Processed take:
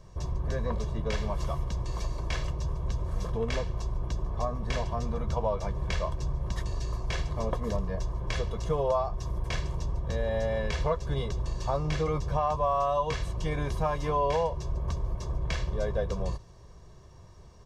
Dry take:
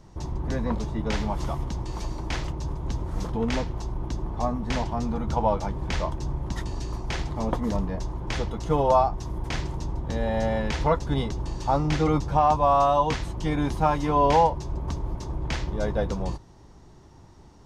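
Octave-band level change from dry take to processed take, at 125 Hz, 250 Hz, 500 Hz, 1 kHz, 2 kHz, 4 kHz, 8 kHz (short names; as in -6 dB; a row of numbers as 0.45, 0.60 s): -2.5, -9.5, -4.0, -8.0, -3.5, -3.5, -3.5 dB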